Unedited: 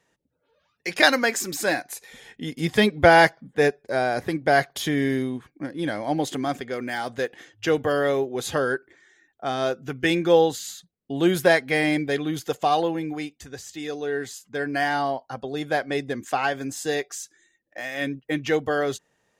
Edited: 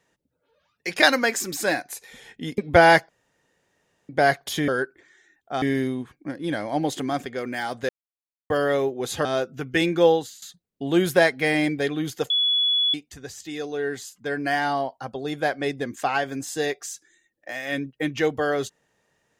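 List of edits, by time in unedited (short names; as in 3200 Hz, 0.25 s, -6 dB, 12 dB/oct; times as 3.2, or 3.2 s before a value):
2.58–2.87 cut
3.38–4.38 room tone
7.24–7.85 mute
8.6–9.54 move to 4.97
10.36–10.71 fade out, to -17 dB
12.59–13.23 bleep 3400 Hz -18 dBFS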